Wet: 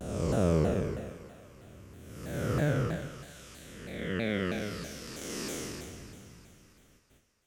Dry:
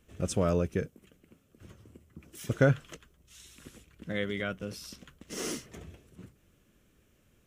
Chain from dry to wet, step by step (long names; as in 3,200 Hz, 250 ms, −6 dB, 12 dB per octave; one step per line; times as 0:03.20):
spectrum smeared in time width 482 ms
noise gate with hold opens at −57 dBFS
on a send: echo with a time of its own for lows and highs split 590 Hz, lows 132 ms, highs 333 ms, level −13.5 dB
on the sum: pitch modulation by a square or saw wave saw down 3.1 Hz, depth 250 cents
level +6 dB